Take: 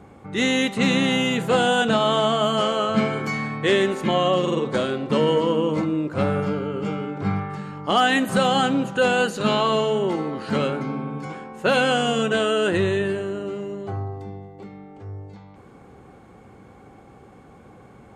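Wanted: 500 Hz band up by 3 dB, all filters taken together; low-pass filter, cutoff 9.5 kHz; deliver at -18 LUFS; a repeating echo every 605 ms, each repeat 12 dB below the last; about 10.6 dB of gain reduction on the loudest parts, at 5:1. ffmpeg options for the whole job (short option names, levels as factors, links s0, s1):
-af "lowpass=9500,equalizer=f=500:t=o:g=3.5,acompressor=threshold=0.0562:ratio=5,aecho=1:1:605|1210|1815:0.251|0.0628|0.0157,volume=3.35"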